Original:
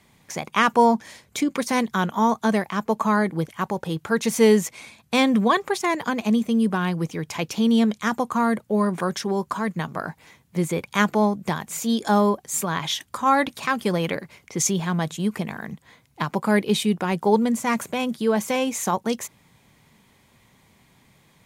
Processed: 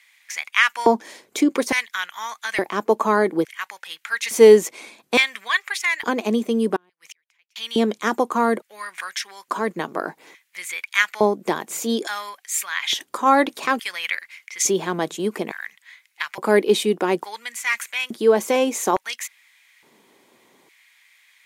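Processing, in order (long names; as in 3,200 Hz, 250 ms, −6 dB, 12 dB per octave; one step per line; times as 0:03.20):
auto-filter high-pass square 0.58 Hz 350–2,000 Hz
0:06.76–0:07.56: gate with flip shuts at −27 dBFS, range −38 dB
level +1.5 dB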